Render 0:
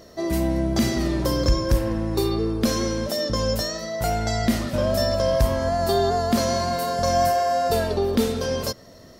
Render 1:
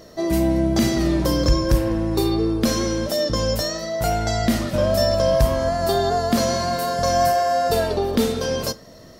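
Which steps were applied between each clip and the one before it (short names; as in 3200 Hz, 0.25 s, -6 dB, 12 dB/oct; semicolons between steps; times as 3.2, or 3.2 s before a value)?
reverb RT60 0.25 s, pre-delay 6 ms, DRR 12.5 dB; gain +2 dB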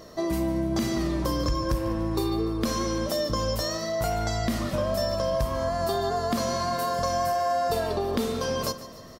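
bell 1100 Hz +8 dB 0.3 oct; compressor 3:1, threshold -23 dBFS, peak gain reduction 9 dB; feedback echo 0.146 s, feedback 53%, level -15.5 dB; gain -2 dB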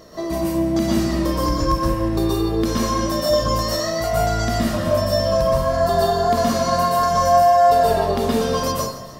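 plate-style reverb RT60 0.5 s, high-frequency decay 0.75×, pre-delay 0.11 s, DRR -4.5 dB; gain +1 dB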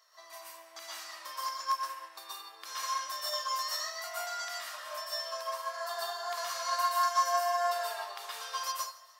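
HPF 970 Hz 24 dB/oct; upward expander 1.5:1, over -38 dBFS; gain -4.5 dB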